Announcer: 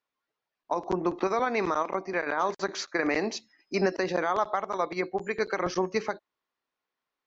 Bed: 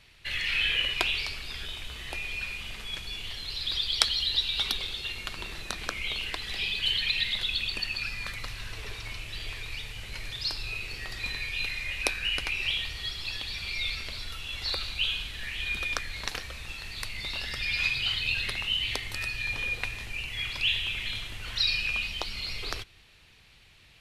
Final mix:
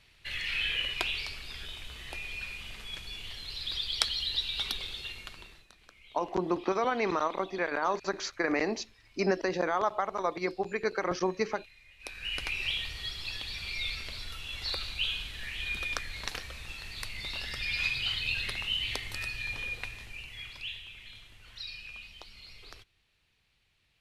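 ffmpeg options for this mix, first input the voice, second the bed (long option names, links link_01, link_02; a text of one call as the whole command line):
ffmpeg -i stem1.wav -i stem2.wav -filter_complex "[0:a]adelay=5450,volume=-2dB[link_01];[1:a]volume=16dB,afade=type=out:start_time=5:duration=0.67:silence=0.112202,afade=type=in:start_time=11.99:duration=0.47:silence=0.0944061,afade=type=out:start_time=19.16:duration=1.7:silence=0.237137[link_02];[link_01][link_02]amix=inputs=2:normalize=0" out.wav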